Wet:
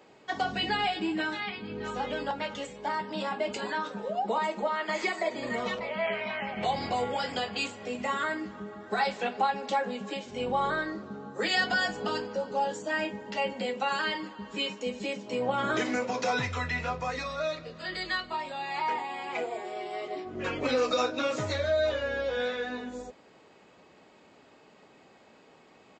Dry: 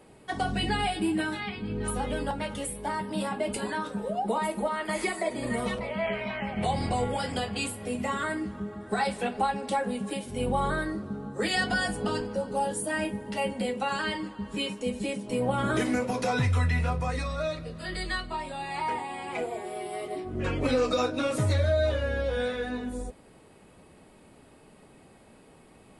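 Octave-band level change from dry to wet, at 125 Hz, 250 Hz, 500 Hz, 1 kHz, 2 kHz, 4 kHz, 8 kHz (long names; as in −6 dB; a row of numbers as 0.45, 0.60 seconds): −11.0, −5.0, −1.0, +0.5, +1.0, +1.5, −7.0 decibels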